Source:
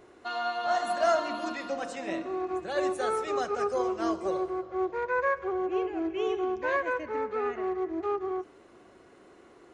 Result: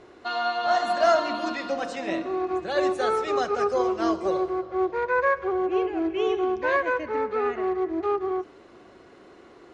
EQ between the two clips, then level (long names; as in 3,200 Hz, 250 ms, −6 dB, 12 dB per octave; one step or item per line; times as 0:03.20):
high-frequency loss of the air 66 metres
parametric band 4,400 Hz +4 dB 0.95 octaves
+5.0 dB